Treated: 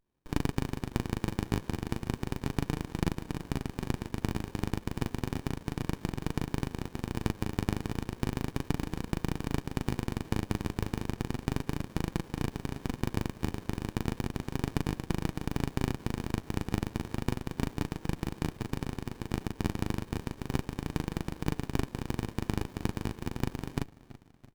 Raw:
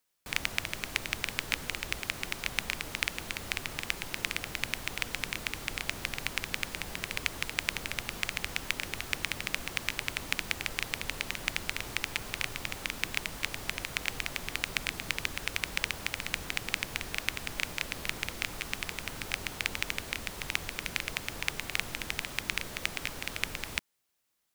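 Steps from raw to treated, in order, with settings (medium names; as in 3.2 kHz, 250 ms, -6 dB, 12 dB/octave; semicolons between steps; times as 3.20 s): steep high-pass 230 Hz 36 dB/octave; treble shelf 9.9 kHz +8 dB; in parallel at -1 dB: peak limiter -19.5 dBFS, peak gain reduction 14.5 dB; on the sum: flange 0.33 Hz, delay 5.9 ms, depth 4.1 ms, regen +56%; doubling 39 ms -3 dB; on a send: frequency-shifting echo 334 ms, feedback 49%, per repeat -48 Hz, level -14 dB; on the sum: sliding maximum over 65 samples; trim -5 dB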